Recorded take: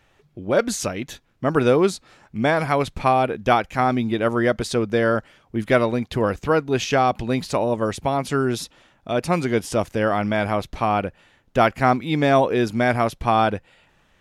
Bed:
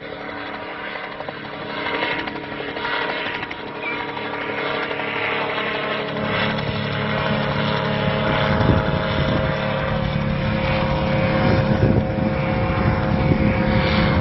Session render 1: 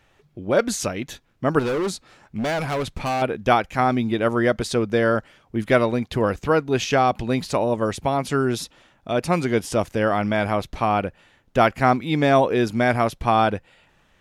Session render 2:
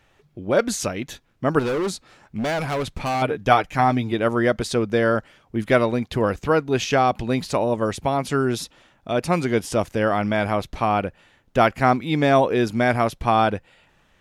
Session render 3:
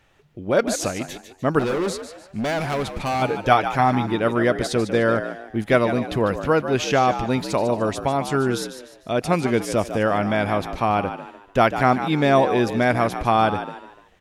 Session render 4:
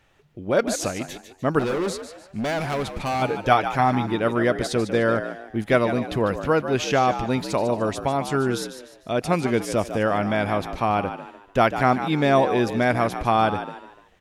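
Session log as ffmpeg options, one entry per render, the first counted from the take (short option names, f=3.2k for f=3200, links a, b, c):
-filter_complex "[0:a]asettb=1/sr,asplit=3[a][b][c];[a]atrim=end=1.594[d];[b]atrim=start=1.59:end=3.22,asetpts=PTS-STARTPTS,afade=t=in:d=0.004:c=qsin,afade=t=out:st=1.626:d=0.004:c=qsin,volume=21dB,asoftclip=hard,volume=-21dB[e];[c]atrim=start=3.216[f];[d][e]acrossfade=d=0.004:c1=hsin:c2=qsin[g];[g][f]acrossfade=d=0.004:c1=qsin:c2=hsin"
-filter_complex "[0:a]asettb=1/sr,asplit=3[a][b][c];[a]atrim=end=3.144[d];[b]atrim=start=3.14:end=4.13,asetpts=PTS-STARTPTS,afade=t=in:d=0.004:c=qsin,afade=t=out:st=0.986:d=0.004:c=qsin,aecho=1:1:6.8:0.53,atrim=end_sample=43659[e];[c]atrim=start=4.126[f];[d][e]acrossfade=d=0.004:c1=hsin:c2=qsin[g];[g][f]acrossfade=d=0.004:c1=qsin:c2=hsin"
-filter_complex "[0:a]asplit=5[a][b][c][d][e];[b]adelay=149,afreqshift=64,volume=-10.5dB[f];[c]adelay=298,afreqshift=128,volume=-19.4dB[g];[d]adelay=447,afreqshift=192,volume=-28.2dB[h];[e]adelay=596,afreqshift=256,volume=-37.1dB[i];[a][f][g][h][i]amix=inputs=5:normalize=0"
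-af "volume=-1.5dB"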